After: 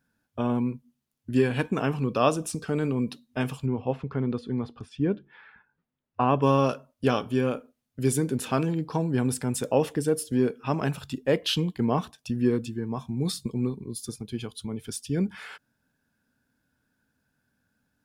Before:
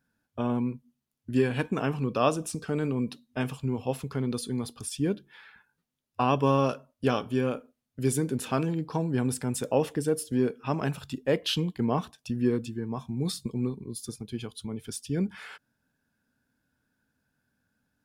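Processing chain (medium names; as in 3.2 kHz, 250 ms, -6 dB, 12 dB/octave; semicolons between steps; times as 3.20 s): 3.66–6.42 s: low-pass 2.1 kHz 12 dB/octave; trim +2 dB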